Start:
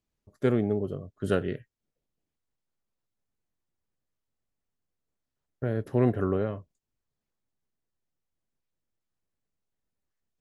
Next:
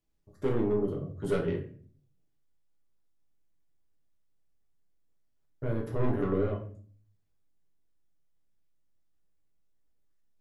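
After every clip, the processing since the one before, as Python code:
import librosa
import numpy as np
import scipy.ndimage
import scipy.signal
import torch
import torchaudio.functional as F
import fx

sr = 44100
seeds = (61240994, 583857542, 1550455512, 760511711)

y = 10.0 ** (-23.0 / 20.0) * np.tanh(x / 10.0 ** (-23.0 / 20.0))
y = fx.room_shoebox(y, sr, seeds[0], volume_m3=44.0, walls='mixed', distance_m=0.64)
y = F.gain(torch.from_numpy(y), -3.0).numpy()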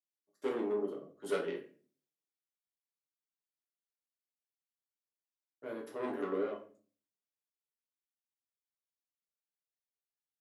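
y = scipy.signal.sosfilt(scipy.signal.butter(4, 230.0, 'highpass', fs=sr, output='sos'), x)
y = fx.low_shelf(y, sr, hz=310.0, db=-8.0)
y = fx.band_widen(y, sr, depth_pct=40)
y = F.gain(torch.from_numpy(y), -2.5).numpy()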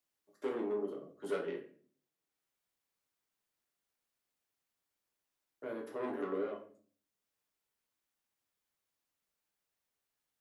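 y = fx.band_squash(x, sr, depth_pct=40)
y = F.gain(torch.from_numpy(y), -1.5).numpy()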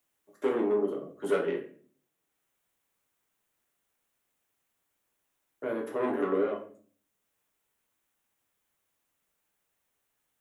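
y = fx.peak_eq(x, sr, hz=4700.0, db=-8.0, octaves=0.61)
y = F.gain(torch.from_numpy(y), 9.0).numpy()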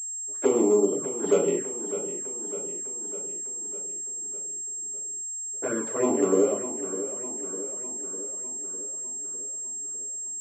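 y = fx.env_flanger(x, sr, rest_ms=7.8, full_db=-26.0)
y = fx.echo_feedback(y, sr, ms=603, feedback_pct=60, wet_db=-12)
y = fx.pwm(y, sr, carrier_hz=7500.0)
y = F.gain(torch.from_numpy(y), 7.0).numpy()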